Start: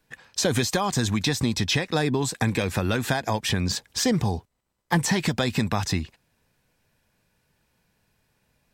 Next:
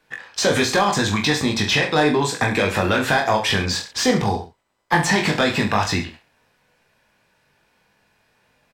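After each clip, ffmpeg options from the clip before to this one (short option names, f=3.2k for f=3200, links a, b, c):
-filter_complex "[0:a]aecho=1:1:20|43|69.45|99.87|134.8:0.631|0.398|0.251|0.158|0.1,asplit=2[a][b];[b]highpass=f=720:p=1,volume=14dB,asoftclip=type=tanh:threshold=-6dB[c];[a][c]amix=inputs=2:normalize=0,lowpass=f=2.3k:p=1,volume=-6dB,volume=1.5dB"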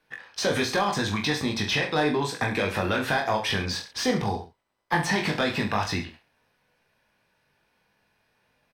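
-af "equalizer=f=7.3k:w=7.4:g=-12.5,volume=-6.5dB"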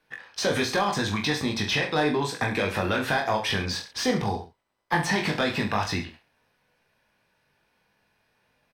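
-af anull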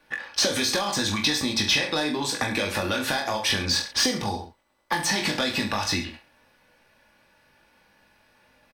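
-filter_complex "[0:a]aecho=1:1:3.5:0.4,acrossover=split=3600[a][b];[a]acompressor=threshold=-33dB:ratio=6[c];[c][b]amix=inputs=2:normalize=0,volume=8dB"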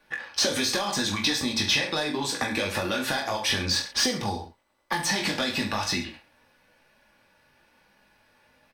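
-af "flanger=delay=4.8:depth=8.3:regen=-49:speed=1:shape=sinusoidal,volume=2.5dB"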